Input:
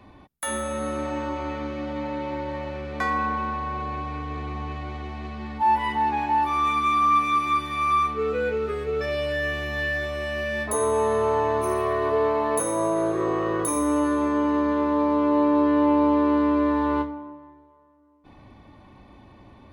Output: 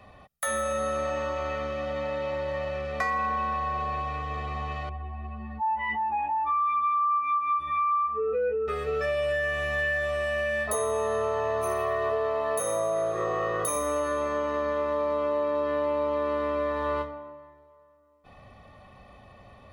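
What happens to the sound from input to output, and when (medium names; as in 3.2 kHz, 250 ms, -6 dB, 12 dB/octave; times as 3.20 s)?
4.89–8.68 s: spectral contrast enhancement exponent 1.7
whole clip: bass shelf 240 Hz -7 dB; comb 1.6 ms, depth 75%; compression, threshold -24 dBFS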